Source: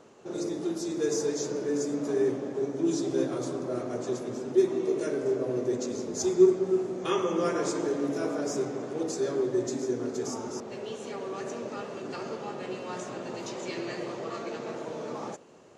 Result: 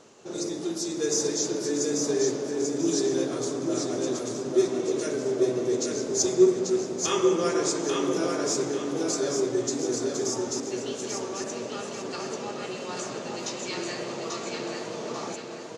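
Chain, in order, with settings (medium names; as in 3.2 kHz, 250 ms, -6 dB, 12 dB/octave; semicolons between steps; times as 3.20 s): peaking EQ 5.9 kHz +9 dB 2.1 oct; feedback delay 839 ms, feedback 32%, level -4 dB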